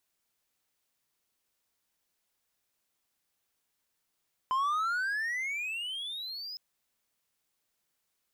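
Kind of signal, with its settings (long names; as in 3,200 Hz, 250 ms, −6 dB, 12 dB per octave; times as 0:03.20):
pitch glide with a swell triangle, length 2.06 s, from 1,020 Hz, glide +28 semitones, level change −12.5 dB, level −23.5 dB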